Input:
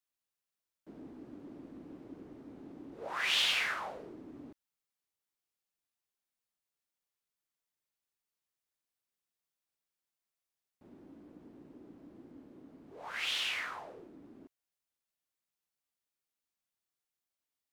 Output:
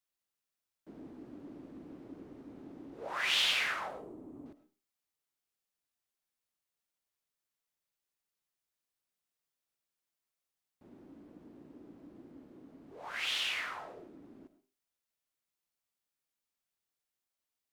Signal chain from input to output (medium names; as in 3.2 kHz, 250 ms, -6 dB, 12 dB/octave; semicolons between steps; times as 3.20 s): 3.88–4.46 s: high-order bell 2.9 kHz -12 dB 2.3 oct; reverberation RT60 0.35 s, pre-delay 55 ms, DRR 11.5 dB